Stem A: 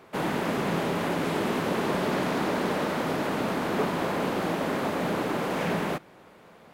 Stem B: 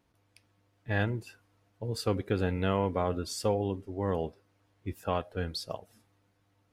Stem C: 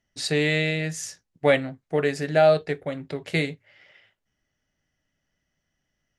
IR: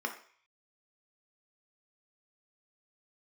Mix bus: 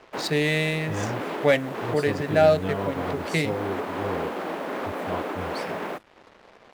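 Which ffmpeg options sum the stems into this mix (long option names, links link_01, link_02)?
-filter_complex "[0:a]highpass=310,alimiter=limit=-23dB:level=0:latency=1:release=279,adynamicsmooth=sensitivity=4:basefreq=2700,volume=2.5dB[link_01];[1:a]volume=-1.5dB,asplit=2[link_02][link_03];[link_03]volume=-3.5dB[link_04];[2:a]adynamicsmooth=sensitivity=5.5:basefreq=2700,volume=-0.5dB,asplit=2[link_05][link_06];[link_06]apad=whole_len=297042[link_07];[link_01][link_07]sidechaincompress=threshold=-32dB:ratio=3:attack=7.9:release=199[link_08];[3:a]atrim=start_sample=2205[link_09];[link_04][link_09]afir=irnorm=-1:irlink=0[link_10];[link_08][link_02][link_05][link_10]amix=inputs=4:normalize=0,acrusher=bits=7:mix=0:aa=0.5"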